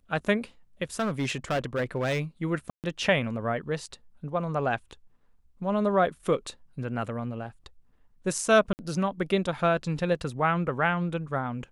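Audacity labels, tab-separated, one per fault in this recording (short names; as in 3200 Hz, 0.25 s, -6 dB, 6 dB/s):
0.990000	2.210000	clipped -23 dBFS
2.700000	2.840000	gap 0.138 s
8.730000	8.790000	gap 59 ms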